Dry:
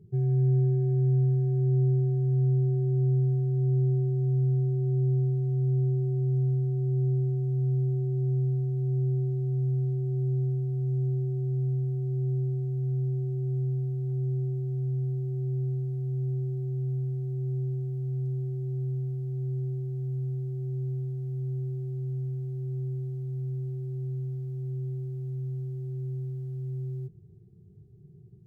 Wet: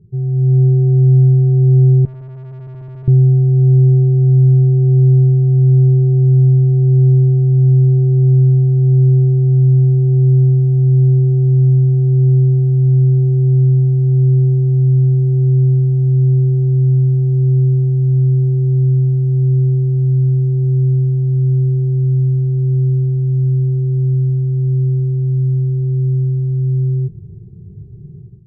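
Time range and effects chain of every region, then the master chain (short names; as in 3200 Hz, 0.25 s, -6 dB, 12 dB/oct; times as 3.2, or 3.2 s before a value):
2.05–3.08 HPF 140 Hz 6 dB/oct + tube stage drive 45 dB, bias 0.45
whole clip: tilt -3 dB/oct; AGC gain up to 12 dB; gain -2 dB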